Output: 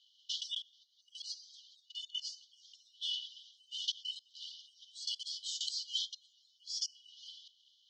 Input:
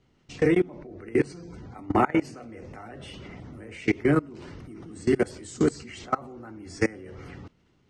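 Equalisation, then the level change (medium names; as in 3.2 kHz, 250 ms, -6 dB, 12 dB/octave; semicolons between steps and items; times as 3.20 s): brick-wall FIR high-pass 2.9 kHz; low-pass 6.4 kHz 24 dB/octave; distance through air 150 m; +16.5 dB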